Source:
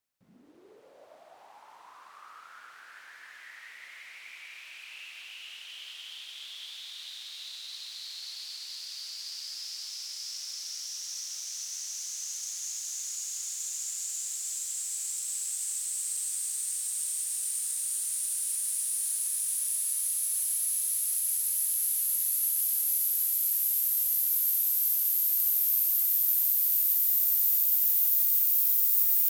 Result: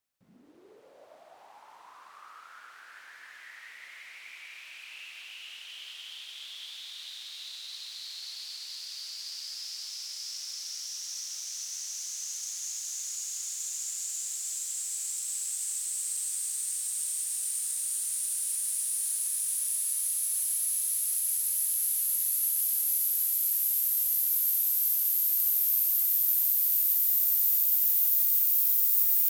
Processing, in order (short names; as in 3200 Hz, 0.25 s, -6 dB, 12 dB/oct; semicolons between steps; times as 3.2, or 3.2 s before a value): 2.28–2.9 HPF 160 Hz 6 dB/oct